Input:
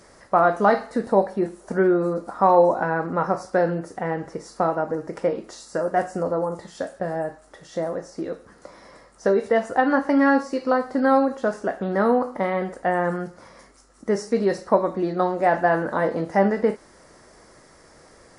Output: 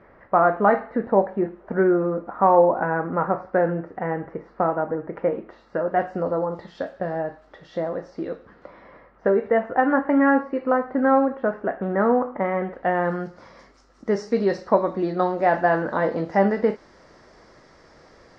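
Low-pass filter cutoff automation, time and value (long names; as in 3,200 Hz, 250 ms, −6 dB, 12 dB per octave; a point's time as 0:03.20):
low-pass filter 24 dB per octave
0:05.45 2,300 Hz
0:06.32 4,100 Hz
0:08.26 4,100 Hz
0:09.30 2,300 Hz
0:12.58 2,300 Hz
0:13.18 5,300 Hz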